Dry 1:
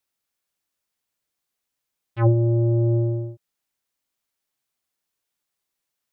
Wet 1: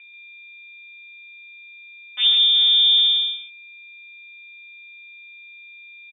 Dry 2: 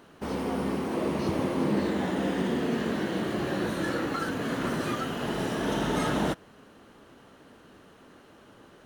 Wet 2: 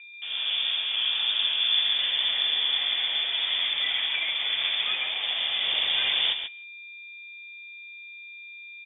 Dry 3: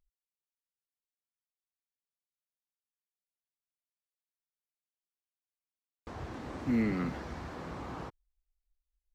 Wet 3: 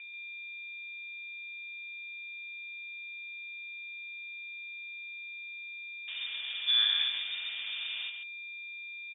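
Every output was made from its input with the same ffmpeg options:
ffmpeg -i in.wav -filter_complex "[0:a]agate=range=-43dB:threshold=-46dB:ratio=16:detection=peak,dynaudnorm=framelen=130:gausssize=5:maxgain=7dB,asplit=2[link_01][link_02];[link_02]asoftclip=type=tanh:threshold=-16dB,volume=-12dB[link_03];[link_01][link_03]amix=inputs=2:normalize=0,acrusher=bits=6:mode=log:mix=0:aa=0.000001,adynamicsmooth=sensitivity=2.5:basefreq=2700,aeval=exprs='val(0)+0.0141*sin(2*PI*1300*n/s)':channel_layout=same,crystalizer=i=1.5:c=0,aeval=exprs='val(0)+0.00398*(sin(2*PI*60*n/s)+sin(2*PI*2*60*n/s)/2+sin(2*PI*3*60*n/s)/3+sin(2*PI*4*60*n/s)/4+sin(2*PI*5*60*n/s)/5)':channel_layout=same,asplit=2[link_04][link_05];[link_05]aecho=0:1:137:0.398[link_06];[link_04][link_06]amix=inputs=2:normalize=0,lowpass=frequency=3100:width_type=q:width=0.5098,lowpass=frequency=3100:width_type=q:width=0.6013,lowpass=frequency=3100:width_type=q:width=0.9,lowpass=frequency=3100:width_type=q:width=2.563,afreqshift=-3700,volume=-7dB" out.wav

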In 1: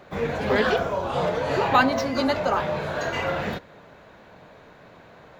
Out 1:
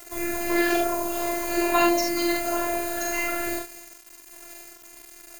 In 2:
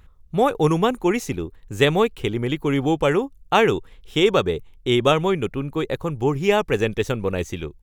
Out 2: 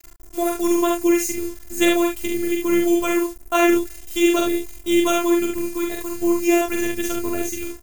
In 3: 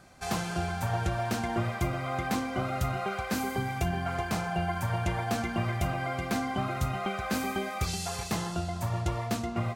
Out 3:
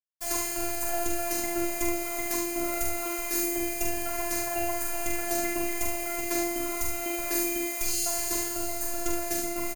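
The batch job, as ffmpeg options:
ffmpeg -i in.wav -af "aphaser=in_gain=1:out_gain=1:delay=1:decay=0.21:speed=1.1:type=sinusoidal,acrusher=bits=6:mix=0:aa=0.000001,afftfilt=real='hypot(re,im)*cos(PI*b)':imag='0':win_size=512:overlap=0.75,aexciter=amount=3.5:drive=6.6:freq=5700,aecho=1:1:44|73:0.631|0.422" out.wav

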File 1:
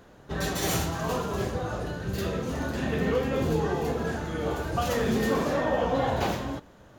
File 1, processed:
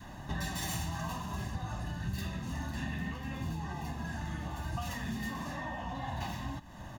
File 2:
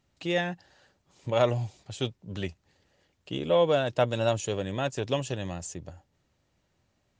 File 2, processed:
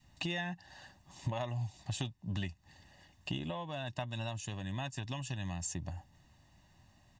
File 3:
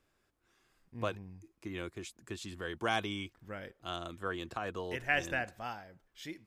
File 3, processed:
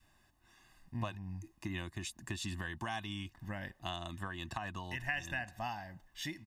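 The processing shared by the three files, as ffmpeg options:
ffmpeg -i in.wav -af "acompressor=threshold=-43dB:ratio=4,adynamicequalizer=threshold=0.00158:dfrequency=500:dqfactor=1:tfrequency=500:tqfactor=1:attack=5:release=100:ratio=0.375:range=3.5:mode=cutabove:tftype=bell,aecho=1:1:1.1:0.81,volume=5dB" out.wav

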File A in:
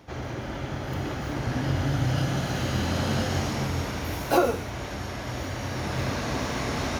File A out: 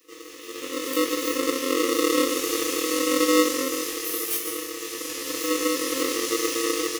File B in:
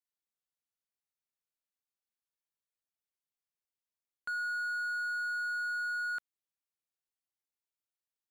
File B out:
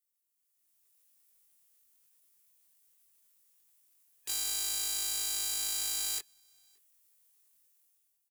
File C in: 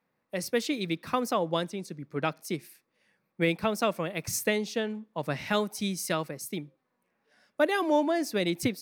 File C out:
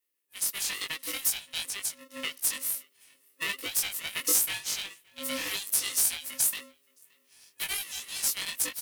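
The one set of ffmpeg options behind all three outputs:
ffmpeg -i in.wav -filter_complex "[0:a]equalizer=frequency=160:width_type=o:width=0.67:gain=-11,equalizer=frequency=4000:width_type=o:width=0.67:gain=-6,equalizer=frequency=10000:width_type=o:width=0.67:gain=4,dynaudnorm=framelen=280:gausssize=5:maxgain=15dB,flanger=delay=1.7:depth=8.1:regen=22:speed=0.45:shape=triangular,afftfilt=real='re*(1-between(b*sr/4096,150,2100))':imag='im*(1-between(b*sr/4096,150,2100))':win_size=4096:overlap=0.75,asoftclip=type=tanh:threshold=-10.5dB,asplit=2[link_01][link_02];[link_02]adelay=20,volume=-2dB[link_03];[link_01][link_03]amix=inputs=2:normalize=0,aeval=exprs='0.447*(cos(1*acos(clip(val(0)/0.447,-1,1)))-cos(1*PI/2))+0.0112*(cos(3*acos(clip(val(0)/0.447,-1,1)))-cos(3*PI/2))+0.00251*(cos(4*acos(clip(val(0)/0.447,-1,1)))-cos(4*PI/2))':channel_layout=same,acrossover=split=150[link_04][link_05];[link_05]acompressor=threshold=-35dB:ratio=3[link_06];[link_04][link_06]amix=inputs=2:normalize=0,aemphasis=mode=production:type=50kf,asplit=2[link_07][link_08];[link_08]adelay=571.4,volume=-24dB,highshelf=frequency=4000:gain=-12.9[link_09];[link_07][link_09]amix=inputs=2:normalize=0,aeval=exprs='val(0)*sgn(sin(2*PI*400*n/s))':channel_layout=same" out.wav

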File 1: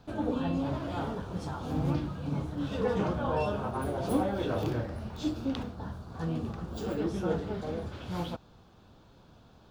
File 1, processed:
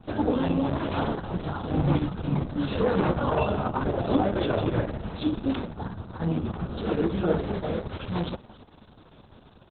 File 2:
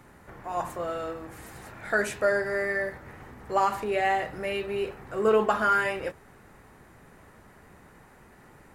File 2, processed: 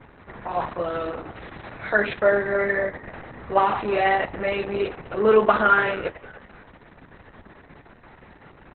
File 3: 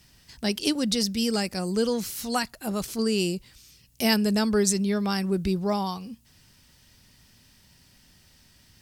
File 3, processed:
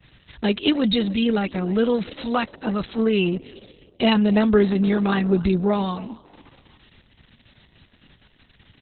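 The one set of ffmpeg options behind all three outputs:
ffmpeg -i in.wav -filter_complex "[0:a]adynamicequalizer=threshold=0.00447:dfrequency=7200:dqfactor=0.74:tfrequency=7200:tqfactor=0.74:attack=5:release=100:ratio=0.375:range=2:mode=cutabove:tftype=bell,asplit=4[link_01][link_02][link_03][link_04];[link_02]adelay=292,afreqshift=43,volume=-22dB[link_05];[link_03]adelay=584,afreqshift=86,volume=-30.2dB[link_06];[link_04]adelay=876,afreqshift=129,volume=-38.4dB[link_07];[link_01][link_05][link_06][link_07]amix=inputs=4:normalize=0,volume=6.5dB" -ar 48000 -c:a libopus -b:a 6k out.opus

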